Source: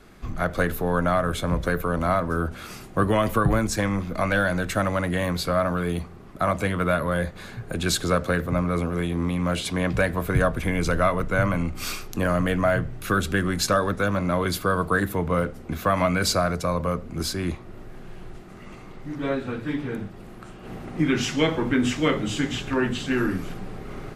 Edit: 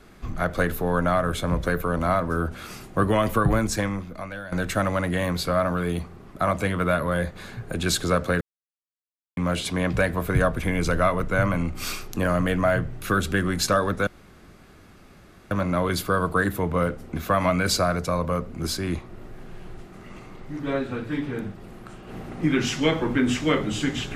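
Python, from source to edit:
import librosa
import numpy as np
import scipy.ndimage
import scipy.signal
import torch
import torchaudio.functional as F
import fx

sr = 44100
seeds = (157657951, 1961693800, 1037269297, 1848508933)

y = fx.edit(x, sr, fx.fade_out_to(start_s=3.76, length_s=0.76, curve='qua', floor_db=-15.0),
    fx.silence(start_s=8.41, length_s=0.96),
    fx.insert_room_tone(at_s=14.07, length_s=1.44), tone=tone)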